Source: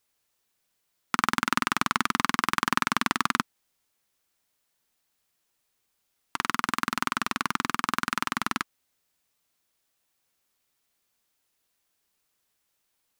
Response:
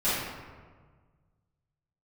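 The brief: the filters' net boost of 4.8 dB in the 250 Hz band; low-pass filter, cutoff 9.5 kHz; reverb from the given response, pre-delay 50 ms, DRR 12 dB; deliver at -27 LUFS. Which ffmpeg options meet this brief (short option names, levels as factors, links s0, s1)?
-filter_complex "[0:a]lowpass=9500,equalizer=f=250:t=o:g=5.5,asplit=2[s0][s1];[1:a]atrim=start_sample=2205,adelay=50[s2];[s1][s2]afir=irnorm=-1:irlink=0,volume=0.0596[s3];[s0][s3]amix=inputs=2:normalize=0"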